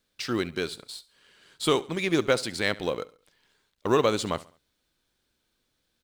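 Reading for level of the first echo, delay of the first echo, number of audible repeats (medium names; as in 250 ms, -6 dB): -20.0 dB, 69 ms, 2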